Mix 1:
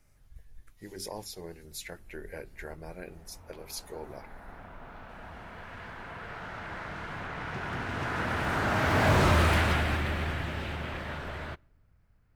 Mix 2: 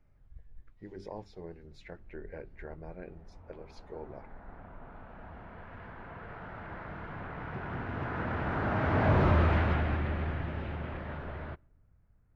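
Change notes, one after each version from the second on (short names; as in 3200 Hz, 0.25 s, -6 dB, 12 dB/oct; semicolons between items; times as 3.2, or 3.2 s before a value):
master: add tape spacing loss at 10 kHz 39 dB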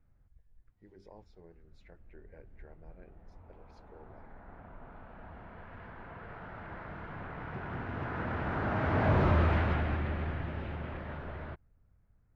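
speech -11.5 dB; reverb: off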